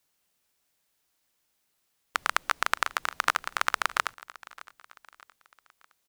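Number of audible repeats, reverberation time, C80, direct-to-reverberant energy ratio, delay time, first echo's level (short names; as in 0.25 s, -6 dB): 3, none, none, none, 0.615 s, -20.0 dB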